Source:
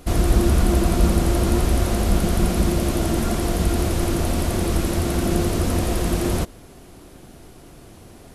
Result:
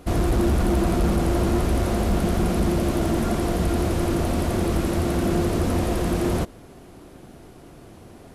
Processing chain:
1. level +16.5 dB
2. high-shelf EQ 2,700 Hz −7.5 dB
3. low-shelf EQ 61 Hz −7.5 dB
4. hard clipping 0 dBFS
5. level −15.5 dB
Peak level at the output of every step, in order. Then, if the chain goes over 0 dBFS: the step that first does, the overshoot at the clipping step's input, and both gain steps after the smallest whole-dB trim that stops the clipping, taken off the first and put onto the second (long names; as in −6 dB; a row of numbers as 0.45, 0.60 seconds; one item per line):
+12.0, +11.5, +9.5, 0.0, −15.5 dBFS
step 1, 9.5 dB
step 1 +6.5 dB, step 5 −5.5 dB